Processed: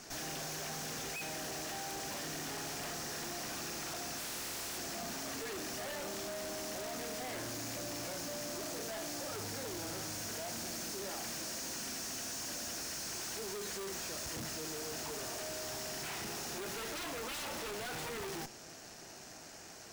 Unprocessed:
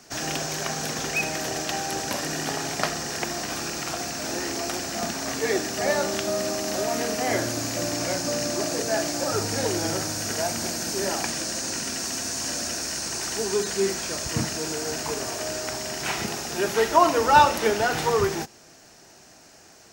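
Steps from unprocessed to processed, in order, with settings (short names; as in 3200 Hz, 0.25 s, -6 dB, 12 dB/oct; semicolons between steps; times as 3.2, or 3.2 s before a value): 4.17–4.77 spectral contrast lowered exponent 0.37; wrapped overs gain 15.5 dB; tube stage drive 44 dB, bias 0.75; gain +3.5 dB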